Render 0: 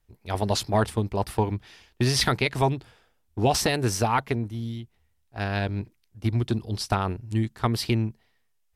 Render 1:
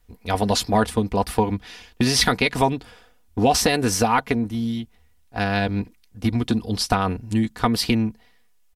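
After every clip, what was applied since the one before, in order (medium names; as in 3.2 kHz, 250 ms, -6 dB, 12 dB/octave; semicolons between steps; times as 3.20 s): comb 4.1 ms, depth 54%; compression 1.5:1, threshold -32 dBFS, peak gain reduction 6 dB; trim +8.5 dB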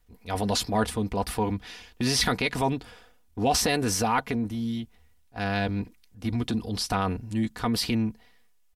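transient shaper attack -5 dB, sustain +3 dB; trim -4.5 dB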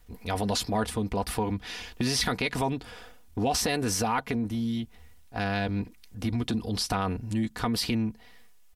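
compression 2:1, threshold -42 dBFS, peak gain reduction 12.5 dB; trim +8.5 dB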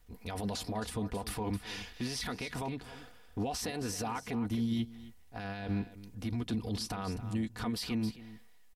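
peak limiter -26 dBFS, peak gain reduction 11 dB; delay 268 ms -12 dB; upward expansion 1.5:1, over -41 dBFS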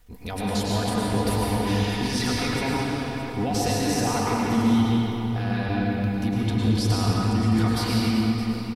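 delay 617 ms -14 dB; reverberation RT60 3.6 s, pre-delay 96 ms, DRR -5 dB; trim +6.5 dB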